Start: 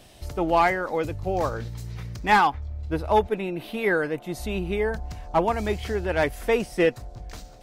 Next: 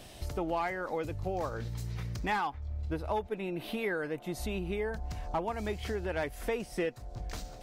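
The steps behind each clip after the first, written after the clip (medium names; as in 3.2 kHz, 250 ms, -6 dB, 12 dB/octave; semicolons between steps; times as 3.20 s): compression 3:1, threshold -35 dBFS, peak gain reduction 15.5 dB; trim +1 dB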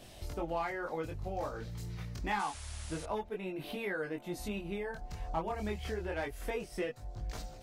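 chorus voices 2, 0.27 Hz, delay 22 ms, depth 2.8 ms; painted sound noise, 2.39–3.06 s, 540–11000 Hz -50 dBFS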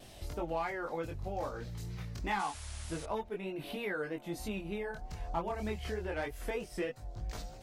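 vibrato 3.2 Hz 55 cents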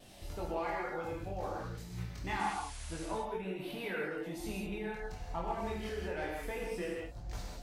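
gated-style reverb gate 220 ms flat, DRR -2 dB; trim -4.5 dB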